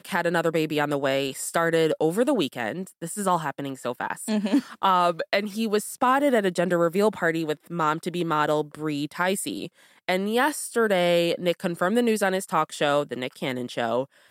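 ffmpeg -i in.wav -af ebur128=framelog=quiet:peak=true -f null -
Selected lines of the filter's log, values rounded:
Integrated loudness:
  I:         -24.7 LUFS
  Threshold: -34.7 LUFS
Loudness range:
  LRA:         2.7 LU
  Threshold: -44.7 LUFS
  LRA low:   -26.0 LUFS
  LRA high:  -23.4 LUFS
True peak:
  Peak:       -8.2 dBFS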